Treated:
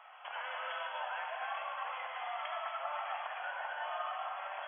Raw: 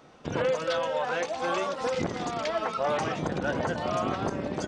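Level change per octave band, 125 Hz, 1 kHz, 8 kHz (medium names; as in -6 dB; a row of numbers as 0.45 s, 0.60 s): under -40 dB, -6.5 dB, under -35 dB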